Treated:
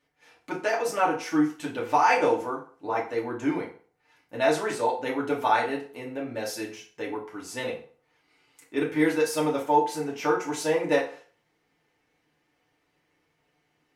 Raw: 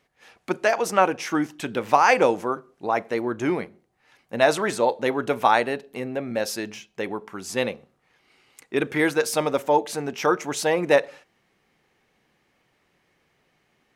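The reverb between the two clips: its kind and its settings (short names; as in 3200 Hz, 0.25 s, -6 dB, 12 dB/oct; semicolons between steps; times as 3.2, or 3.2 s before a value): FDN reverb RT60 0.43 s, low-frequency decay 0.8×, high-frequency decay 0.8×, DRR -4 dB; gain -10 dB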